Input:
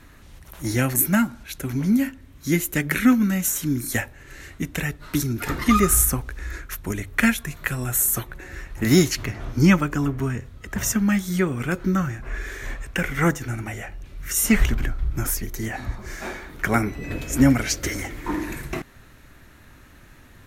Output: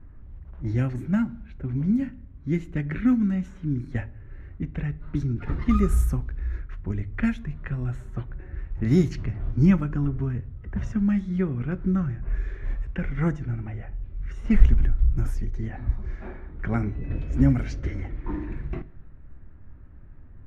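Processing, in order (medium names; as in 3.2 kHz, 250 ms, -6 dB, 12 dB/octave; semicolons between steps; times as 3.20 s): RIAA curve playback; level-controlled noise filter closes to 1.4 kHz, open at -5 dBFS; on a send: reverberation RT60 0.50 s, pre-delay 5 ms, DRR 16.5 dB; on the sum: trim -11 dB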